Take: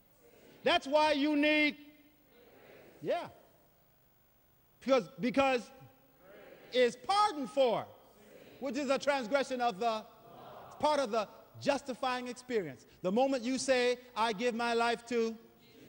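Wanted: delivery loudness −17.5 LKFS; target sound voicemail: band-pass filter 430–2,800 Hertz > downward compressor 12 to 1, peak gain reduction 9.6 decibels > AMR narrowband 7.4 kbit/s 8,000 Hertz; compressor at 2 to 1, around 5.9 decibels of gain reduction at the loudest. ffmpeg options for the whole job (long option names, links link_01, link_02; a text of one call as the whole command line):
ffmpeg -i in.wav -af "acompressor=threshold=-34dB:ratio=2,highpass=430,lowpass=2800,acompressor=threshold=-38dB:ratio=12,volume=28dB" -ar 8000 -c:a libopencore_amrnb -b:a 7400 out.amr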